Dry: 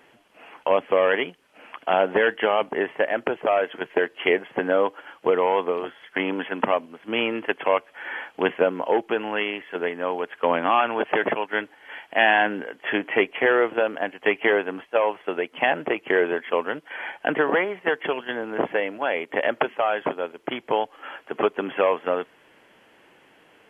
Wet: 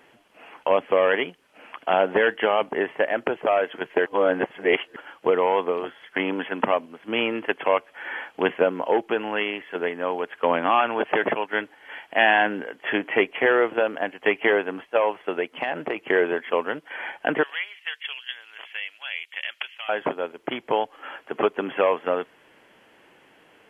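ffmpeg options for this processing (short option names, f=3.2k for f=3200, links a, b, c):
-filter_complex "[0:a]asettb=1/sr,asplit=3[a][b][c];[a]atrim=end=15.564[d];[b]atrim=start=15.56:end=16.08,asetpts=PTS-STARTPTS,afade=t=in:d=0.004:c=qsin,afade=t=out:st=0.516:d=0.004:c=qsin,acompressor=threshold=-21dB:ratio=6:attack=3.2:release=140:knee=1:detection=peak[e];[c]atrim=start=16.076[f];[d][e]acrossfade=d=0.004:c1=hsin:c2=qsin[g];[g][f]acrossfade=d=0.004:c1=qsin:c2=hsin,asettb=1/sr,asplit=3[h][i][j];[h]atrim=end=17.434[k];[i]atrim=start=17.43:end=19.89,asetpts=PTS-STARTPTS,afade=t=in:d=0.004:c=qsin,afade=t=out:st=2.456:d=0.004:c=qsin,highpass=f=3k:t=q:w=1.7[l];[j]atrim=start=19.886[m];[k][l]acrossfade=d=0.004:c1=hsin:c2=qsin[n];[n][m]acrossfade=d=0.004:c1=qsin:c2=hsin,asplit=3[o][p][q];[o]atrim=end=4.062[r];[p]atrim=start=4.058:end=4.962,asetpts=PTS-STARTPTS,areverse[s];[q]atrim=start=4.958[t];[r][s]acrossfade=d=0.004:c1=hsin:c2=hsin[u];[u][t]acrossfade=d=0.004:c1=hsin:c2=hsin"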